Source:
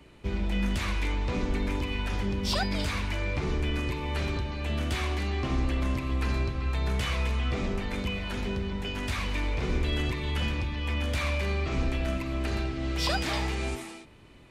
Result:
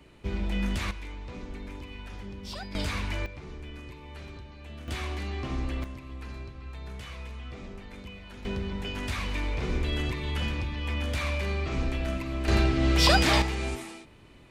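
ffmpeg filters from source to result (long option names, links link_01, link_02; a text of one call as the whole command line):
ffmpeg -i in.wav -af "asetnsamples=nb_out_samples=441:pad=0,asendcmd='0.91 volume volume -11dB;2.75 volume volume -1dB;3.26 volume volume -13dB;4.88 volume volume -4dB;5.84 volume volume -12dB;8.45 volume volume -1dB;12.48 volume volume 7.5dB;13.42 volume volume 0dB',volume=-1dB" out.wav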